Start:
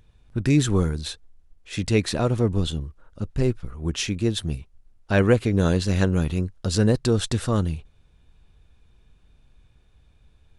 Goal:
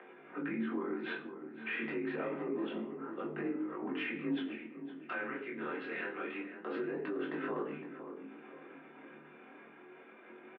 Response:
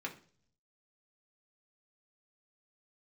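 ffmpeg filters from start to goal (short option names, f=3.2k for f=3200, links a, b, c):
-filter_complex "[0:a]agate=range=-33dB:threshold=-46dB:ratio=3:detection=peak,equalizer=f=120:t=o:w=0.84:g=11.5,acompressor=mode=upward:threshold=-21dB:ratio=2.5,highpass=f=260:t=q:w=0.5412,highpass=f=260:t=q:w=1.307,lowpass=f=2.6k:t=q:w=0.5176,lowpass=f=2.6k:t=q:w=0.7071,lowpass=f=2.6k:t=q:w=1.932,afreqshift=-220,acompressor=threshold=-34dB:ratio=6,asettb=1/sr,asplit=3[a][b][c];[a]atrim=end=4.314[d];[b]atrim=start=4.31:end=6.57,asetpts=PTS-STARTPTS,afade=t=in:d=0.004:c=qsin,afade=t=out:st=2.256:d=0.004:c=qsin,tiltshelf=f=1.4k:g=-8.5[e];[c]atrim=start=6.566[f];[d][e]acrossfade=d=0.004:c1=hsin:c2=qsin[g];[g][f]acrossfade=d=0.004:c1=qsin:c2=hsin[h];[1:a]atrim=start_sample=2205,afade=t=out:st=0.19:d=0.01,atrim=end_sample=8820,asetrate=33075,aresample=44100[i];[h][i]afir=irnorm=-1:irlink=0,alimiter=level_in=8dB:limit=-24dB:level=0:latency=1:release=22,volume=-8dB,bandreject=f=50:t=h:w=6,bandreject=f=100:t=h:w=6,bandreject=f=150:t=h:w=6,afreqshift=150,asplit=2[j][k];[k]adelay=512,lowpass=f=1.4k:p=1,volume=-9dB,asplit=2[l][m];[m]adelay=512,lowpass=f=1.4k:p=1,volume=0.47,asplit=2[n][o];[o]adelay=512,lowpass=f=1.4k:p=1,volume=0.47,asplit=2[p][q];[q]adelay=512,lowpass=f=1.4k:p=1,volume=0.47,asplit=2[r][s];[s]adelay=512,lowpass=f=1.4k:p=1,volume=0.47[t];[j][l][n][p][r][t]amix=inputs=6:normalize=0,flanger=delay=19.5:depth=7.3:speed=0.27,volume=5.5dB"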